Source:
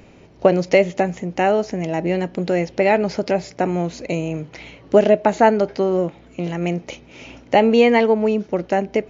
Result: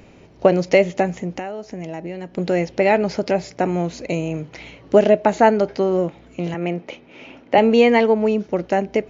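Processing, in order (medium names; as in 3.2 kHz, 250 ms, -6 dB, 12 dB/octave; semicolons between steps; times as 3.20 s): 1.31–2.38 s: compression 8:1, threshold -27 dBFS, peak gain reduction 14 dB; 6.54–7.58 s: three-band isolator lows -15 dB, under 160 Hz, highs -15 dB, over 3.8 kHz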